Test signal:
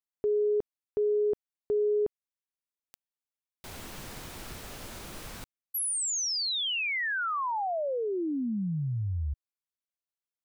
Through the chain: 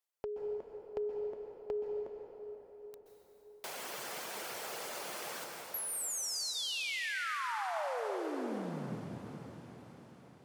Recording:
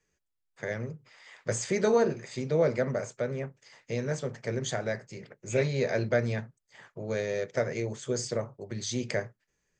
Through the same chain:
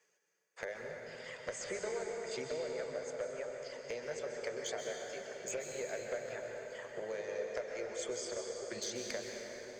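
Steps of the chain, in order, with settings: band-stop 3.8 kHz, Q 19; reverb removal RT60 1.8 s; high-pass 150 Hz 24 dB/octave; resonant low shelf 360 Hz -10.5 dB, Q 1.5; compression 8:1, threshold -43 dBFS; one-sided clip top -38 dBFS; echo that smears into a reverb 456 ms, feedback 65%, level -16 dB; plate-style reverb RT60 4 s, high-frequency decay 0.6×, pre-delay 115 ms, DRR 0.5 dB; trim +4 dB

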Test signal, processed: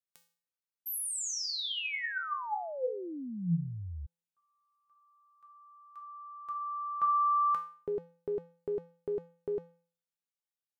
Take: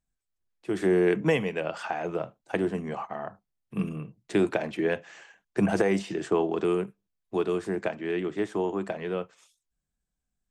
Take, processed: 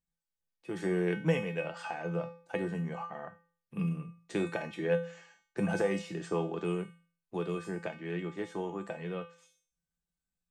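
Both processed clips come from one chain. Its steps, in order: feedback comb 170 Hz, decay 0.45 s, harmonics odd, mix 90%; trim +9 dB

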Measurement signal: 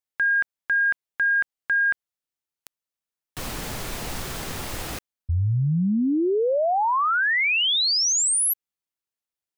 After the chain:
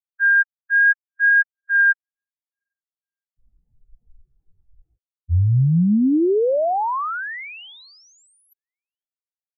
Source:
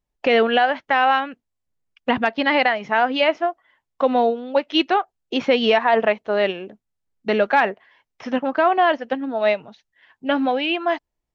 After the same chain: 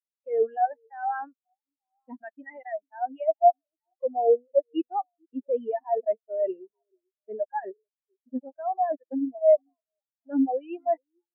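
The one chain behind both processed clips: dynamic bell 1.6 kHz, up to +4 dB, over -31 dBFS, Q 0.93; wow and flutter 0.71 Hz 16 cents; reverse; compression 6:1, threshold -25 dBFS; reverse; word length cut 6-bit, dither none; on a send: repeats whose band climbs or falls 441 ms, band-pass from 360 Hz, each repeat 1.4 oct, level -9 dB; on the sum: spectral contrast expander 4:1; trim +3.5 dB

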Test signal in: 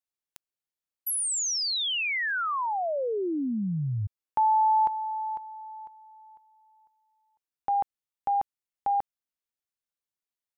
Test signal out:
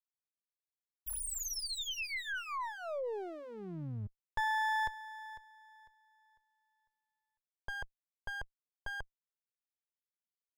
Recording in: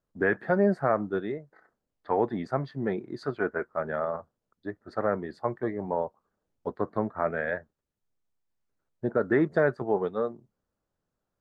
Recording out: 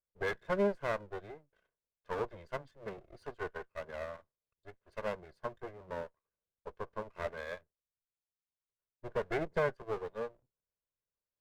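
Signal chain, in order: comb filter that takes the minimum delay 1.9 ms; upward expansion 1.5:1, over -40 dBFS; trim -6 dB

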